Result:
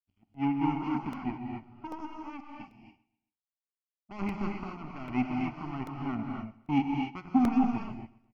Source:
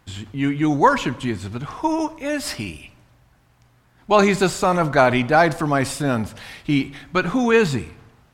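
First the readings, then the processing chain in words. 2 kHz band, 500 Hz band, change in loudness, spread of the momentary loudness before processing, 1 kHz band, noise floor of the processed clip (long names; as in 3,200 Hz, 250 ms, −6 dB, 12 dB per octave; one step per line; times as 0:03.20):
−21.0 dB, −25.5 dB, −12.5 dB, 13 LU, −15.0 dB, below −85 dBFS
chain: high-pass filter 54 Hz
soft clipping −16.5 dBFS, distortion −9 dB
octave-band graphic EQ 125/250/500/1,000/4,000/8,000 Hz −5/+10/−5/−3/−6/−11 dB
power curve on the samples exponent 3
high-frequency loss of the air 180 metres
phaser with its sweep stopped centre 2,500 Hz, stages 8
on a send: repeating echo 129 ms, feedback 42%, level −20.5 dB
on the sum: reverb whose tail is shaped and stops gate 300 ms rising, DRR 1 dB
regular buffer underruns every 0.79 s, samples 64, repeat, from 0:00.34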